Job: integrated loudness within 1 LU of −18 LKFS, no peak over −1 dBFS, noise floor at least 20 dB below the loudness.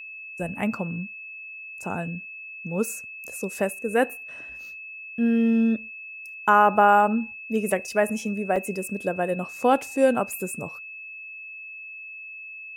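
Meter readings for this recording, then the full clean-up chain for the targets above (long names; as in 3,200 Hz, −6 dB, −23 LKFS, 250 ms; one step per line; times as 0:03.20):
number of dropouts 2; longest dropout 3.3 ms; interfering tone 2,600 Hz; level of the tone −37 dBFS; integrated loudness −24.5 LKFS; sample peak −6.0 dBFS; target loudness −18.0 LKFS
→ repair the gap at 0:08.56/0:10.33, 3.3 ms
notch filter 2,600 Hz, Q 30
level +6.5 dB
brickwall limiter −1 dBFS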